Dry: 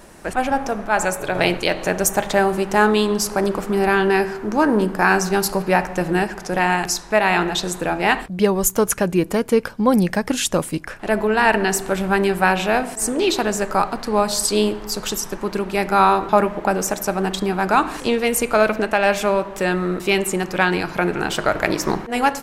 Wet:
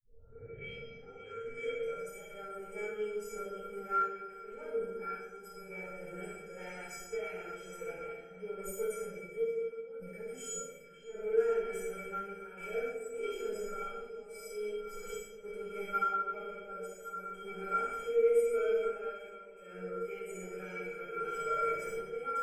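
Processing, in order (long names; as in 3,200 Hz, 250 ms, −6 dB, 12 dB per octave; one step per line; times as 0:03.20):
turntable start at the beginning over 2.06 s
thirty-one-band graphic EQ 250 Hz +9 dB, 4,000 Hz −11 dB, 6,300 Hz −10 dB, 10,000 Hz −12 dB
harmonic and percussive parts rebalanced percussive −15 dB
parametric band 5,800 Hz +9 dB 2 octaves
in parallel at −0.5 dB: speech leveller within 4 dB 0.5 s
on the sum: brickwall limiter −5 dBFS, peak gain reduction 8 dB
sample-and-hold tremolo, depth 90%
soft clipping −13 dBFS, distortion −14 dB
phaser with its sweep stopped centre 1,100 Hz, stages 6
tuned comb filter 460 Hz, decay 0.3 s, harmonics odd, mix 100%
on a send: echo through a band-pass that steps 557 ms, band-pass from 3,100 Hz, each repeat −1.4 octaves, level −9 dB
on the sum: rectangular room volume 530 cubic metres, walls mixed, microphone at 4.2 metres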